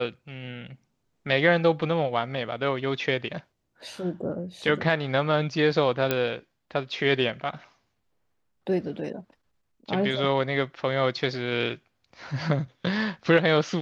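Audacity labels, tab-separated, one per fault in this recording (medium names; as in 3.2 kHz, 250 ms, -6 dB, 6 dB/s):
6.110000	6.110000	pop -9 dBFS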